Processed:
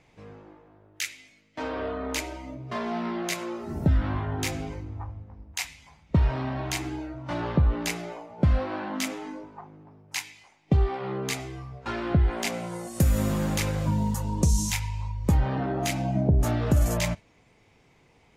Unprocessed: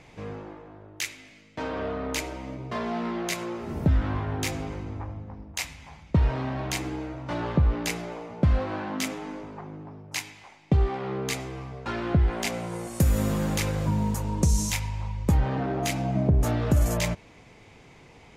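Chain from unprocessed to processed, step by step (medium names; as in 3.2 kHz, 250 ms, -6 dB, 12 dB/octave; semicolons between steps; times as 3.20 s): spectral noise reduction 9 dB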